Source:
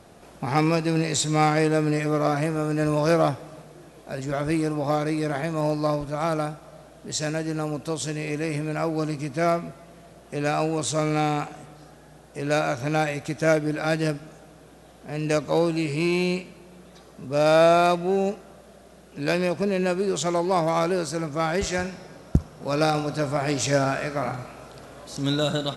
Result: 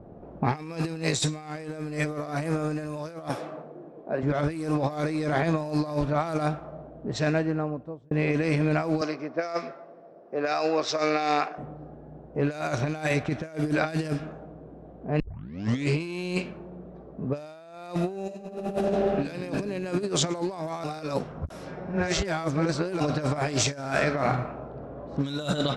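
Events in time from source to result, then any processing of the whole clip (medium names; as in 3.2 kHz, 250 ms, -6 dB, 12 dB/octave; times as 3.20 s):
3.29–4.23 s: high-pass 240 Hz
7.08–8.11 s: fade out
9.01–11.58 s: cabinet simulation 460–6300 Hz, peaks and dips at 910 Hz -4 dB, 3.1 kHz -5 dB, 5.3 kHz +10 dB
15.20 s: tape start 0.70 s
18.24–19.23 s: reverb throw, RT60 2.8 s, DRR -11.5 dB
20.84–23.00 s: reverse
whole clip: level-controlled noise filter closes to 510 Hz, open at -19.5 dBFS; compressor with a negative ratio -28 dBFS, ratio -0.5; trim +1 dB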